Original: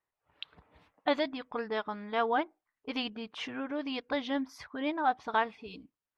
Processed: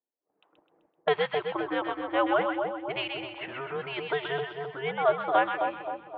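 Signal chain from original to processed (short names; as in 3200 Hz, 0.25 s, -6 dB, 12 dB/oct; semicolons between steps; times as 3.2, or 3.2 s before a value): low-pass opened by the level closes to 420 Hz, open at -29.5 dBFS; mistuned SSB -130 Hz 440–3400 Hz; split-band echo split 1000 Hz, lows 0.263 s, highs 0.128 s, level -4.5 dB; gain +4.5 dB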